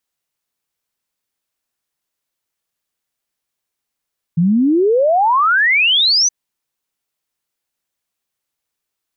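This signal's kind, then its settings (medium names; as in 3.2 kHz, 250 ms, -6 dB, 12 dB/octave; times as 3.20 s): log sweep 160 Hz -> 6.2 kHz 1.92 s -10 dBFS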